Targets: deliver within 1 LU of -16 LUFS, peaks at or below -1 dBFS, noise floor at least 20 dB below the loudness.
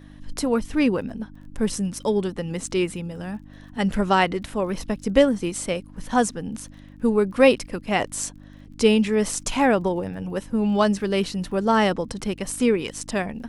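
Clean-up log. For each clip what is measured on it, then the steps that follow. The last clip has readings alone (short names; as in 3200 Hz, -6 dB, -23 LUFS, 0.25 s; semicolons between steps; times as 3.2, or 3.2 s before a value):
ticks 29/s; hum 50 Hz; harmonics up to 300 Hz; hum level -44 dBFS; loudness -23.0 LUFS; peak -3.5 dBFS; loudness target -16.0 LUFS
-> de-click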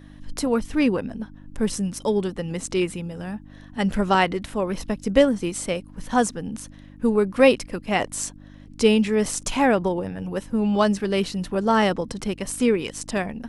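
ticks 0/s; hum 50 Hz; harmonics up to 300 Hz; hum level -44 dBFS
-> de-hum 50 Hz, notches 6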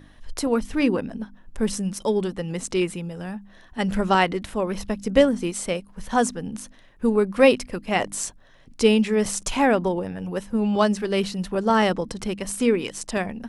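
hum none; loudness -23.5 LUFS; peak -3.5 dBFS; loudness target -16.0 LUFS
-> gain +7.5 dB; limiter -1 dBFS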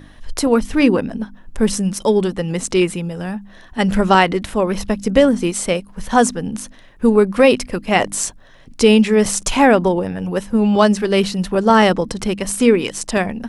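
loudness -16.5 LUFS; peak -1.0 dBFS; noise floor -44 dBFS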